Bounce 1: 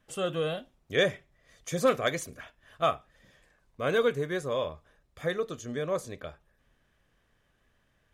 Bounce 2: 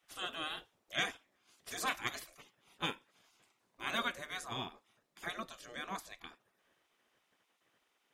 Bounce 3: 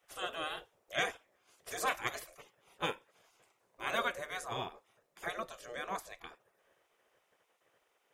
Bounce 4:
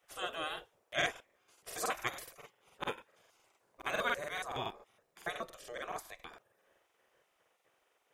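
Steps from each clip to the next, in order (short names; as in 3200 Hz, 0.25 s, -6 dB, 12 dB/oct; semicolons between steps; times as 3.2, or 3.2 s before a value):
spectral gate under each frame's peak -15 dB weak
graphic EQ 250/500/4000 Hz -8/+8/-5 dB; gain +2 dB
crackling interface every 0.14 s, samples 2048, repeat, from 0.83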